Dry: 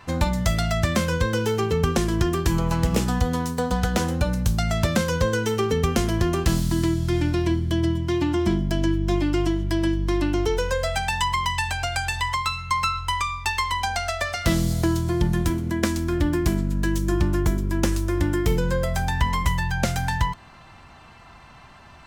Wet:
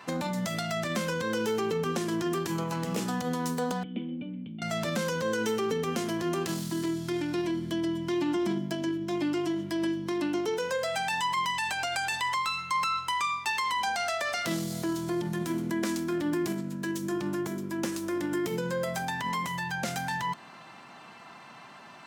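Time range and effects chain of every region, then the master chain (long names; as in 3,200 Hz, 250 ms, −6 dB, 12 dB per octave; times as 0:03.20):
0:03.83–0:04.62: formant resonators in series i + low-shelf EQ 100 Hz −9 dB
whole clip: brickwall limiter −20 dBFS; high-pass filter 170 Hz 24 dB per octave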